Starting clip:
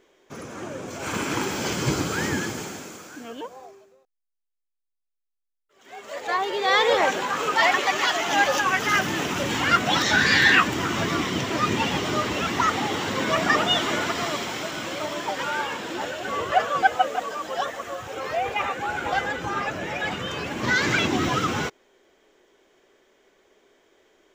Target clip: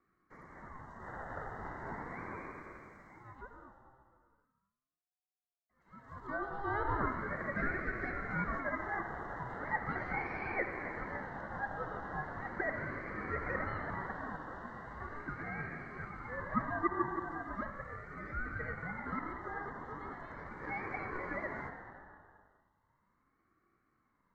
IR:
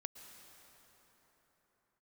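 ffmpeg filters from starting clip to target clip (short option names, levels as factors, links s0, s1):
-filter_complex "[0:a]asuperstop=centerf=2300:order=12:qfactor=1.3,acrossover=split=2200[s0][s1];[s1]acompressor=threshold=0.00501:ratio=6[s2];[s0][s2]amix=inputs=2:normalize=0,acrossover=split=400 2000:gain=0.224 1 0.0794[s3][s4][s5];[s3][s4][s5]amix=inputs=3:normalize=0[s6];[1:a]atrim=start_sample=2205,asetrate=83790,aresample=44100[s7];[s6][s7]afir=irnorm=-1:irlink=0,aeval=exprs='val(0)*sin(2*PI*570*n/s+570*0.3/0.38*sin(2*PI*0.38*n/s))':c=same,volume=1.12"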